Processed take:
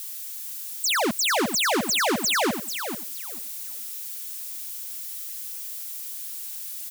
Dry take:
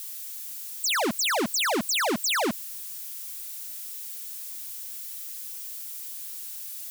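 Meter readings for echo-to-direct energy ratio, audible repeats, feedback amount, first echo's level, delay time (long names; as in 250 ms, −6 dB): −9.0 dB, 2, 19%, −9.0 dB, 440 ms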